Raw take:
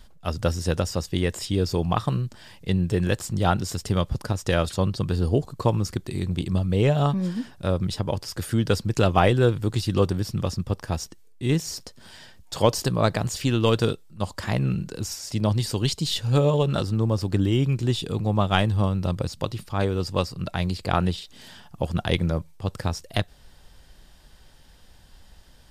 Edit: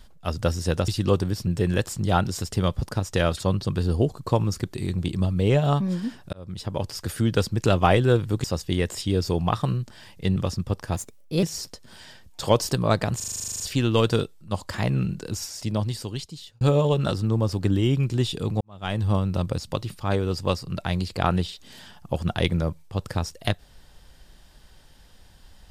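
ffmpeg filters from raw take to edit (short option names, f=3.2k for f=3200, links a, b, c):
-filter_complex "[0:a]asplit=21[a][b][c][d][e][f][g][h][i][j][k][l][m][n][o][p][q][r][s][t][u];[a]atrim=end=0.882[v];[b]atrim=start=9.768:end=10.362[w];[c]atrim=start=2.798:end=7.66,asetpts=PTS-STARTPTS,afade=t=out:st=4.858:d=0.004:c=hsin[x];[d]atrim=start=7.66:end=9.772,asetpts=PTS-STARTPTS,afade=t=in:d=0.53[y];[e]atrim=start=0.878:end=2.802[z];[f]atrim=start=10.358:end=10.964[aa];[g]atrim=start=10.96:end=11.56,asetpts=PTS-STARTPTS,asetrate=56448,aresample=44100[ab];[h]atrim=start=11.556:end=13.332[ac];[i]atrim=start=13.288:end=13.332[ad];[j]atrim=start=13.288:end=13.332[ae];[k]atrim=start=13.288:end=13.332[af];[l]atrim=start=13.288:end=13.332[ag];[m]atrim=start=13.288:end=13.332[ah];[n]atrim=start=13.288:end=13.332[ai];[o]atrim=start=13.288:end=13.332[aj];[p]atrim=start=13.288:end=13.332[ak];[q]atrim=start=13.288:end=13.332[al];[r]atrim=start=13.288:end=13.332[am];[s]atrim=start=13.288:end=16.3,asetpts=PTS-STARTPTS,afade=t=out:st=1.842:d=1.17[an];[t]atrim=start=16.3:end=18.3,asetpts=PTS-STARTPTS,afade=t=in:d=0.004:c=hsin,afade=t=out:st=1.996:d=0.004:c=hsin[ao];[u]atrim=start=18.3,asetpts=PTS-STARTPTS,afade=t=in:d=0.44:c=qua[ap];[v][w]acrossfade=d=0.004:c1=hsin:c2=hsin[aq];[x][y]concat=n=2:v=0:a=1[ar];[aq][ar]acrossfade=d=0.004:c1=hsin:c2=hsin[as];[as][z]acrossfade=d=0.004:c1=hsin:c2=hsin[at];[at][aa]acrossfade=d=0.004:c1=hsin:c2=hsin[au];[au][ab]acrossfade=d=0.004:c1=hsin:c2=hsin[av];[av][ac]acrossfade=d=0.004:c1=hsin:c2=hsin[aw];[aw][ad]acrossfade=d=0.004:c1=hsin:c2=hsin[ax];[ax][ae]acrossfade=d=0.004:c1=hsin:c2=hsin[ay];[ay][af]acrossfade=d=0.004:c1=hsin:c2=hsin[az];[az][ag]acrossfade=d=0.004:c1=hsin:c2=hsin[ba];[ba][ah]acrossfade=d=0.004:c1=hsin:c2=hsin[bb];[bb][ai]acrossfade=d=0.004:c1=hsin:c2=hsin[bc];[bc][aj]acrossfade=d=0.004:c1=hsin:c2=hsin[bd];[bd][ak]acrossfade=d=0.004:c1=hsin:c2=hsin[be];[be][al]acrossfade=d=0.004:c1=hsin:c2=hsin[bf];[bf][am]acrossfade=d=0.004:c1=hsin:c2=hsin[bg];[an][ao][ap]concat=n=3:v=0:a=1[bh];[bg][bh]acrossfade=d=0.004:c1=hsin:c2=hsin"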